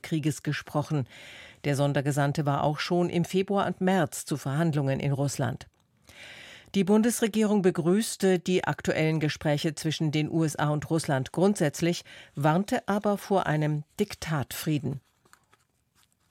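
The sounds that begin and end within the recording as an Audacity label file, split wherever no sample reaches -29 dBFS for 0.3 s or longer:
1.640000	5.610000	sound
6.740000	11.990000	sound
12.380000	14.930000	sound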